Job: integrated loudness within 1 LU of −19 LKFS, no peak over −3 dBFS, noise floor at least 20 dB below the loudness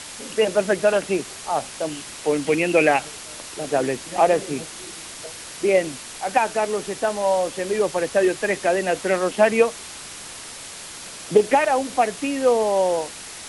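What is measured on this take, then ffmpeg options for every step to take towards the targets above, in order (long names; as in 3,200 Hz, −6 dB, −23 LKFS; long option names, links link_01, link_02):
background noise floor −37 dBFS; target noise floor −42 dBFS; integrated loudness −21.5 LKFS; sample peak −3.5 dBFS; target loudness −19.0 LKFS
→ -af "afftdn=noise_reduction=6:noise_floor=-37"
-af "volume=2.5dB,alimiter=limit=-3dB:level=0:latency=1"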